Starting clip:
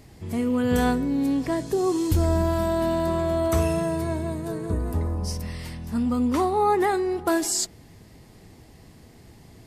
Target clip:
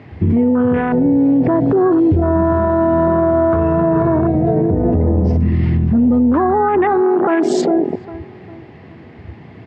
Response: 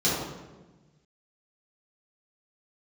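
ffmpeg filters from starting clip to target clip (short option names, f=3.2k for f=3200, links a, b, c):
-filter_complex "[0:a]asplit=2[a][b];[b]adelay=403,lowpass=f=880:p=1,volume=-13dB,asplit=2[c][d];[d]adelay=403,lowpass=f=880:p=1,volume=0.49,asplit=2[e][f];[f]adelay=403,lowpass=f=880:p=1,volume=0.49,asplit=2[g][h];[h]adelay=403,lowpass=f=880:p=1,volume=0.49,asplit=2[i][j];[j]adelay=403,lowpass=f=880:p=1,volume=0.49[k];[a][c][e][g][i][k]amix=inputs=6:normalize=0,afwtdn=0.0355,lowpass=f=2.4k:w=0.5412,lowpass=f=2.4k:w=1.3066,aemphasis=mode=production:type=75fm,acompressor=threshold=-31dB:ratio=6,highpass=f=90:w=0.5412,highpass=f=90:w=1.3066,alimiter=level_in=35.5dB:limit=-1dB:release=50:level=0:latency=1,volume=-6.5dB"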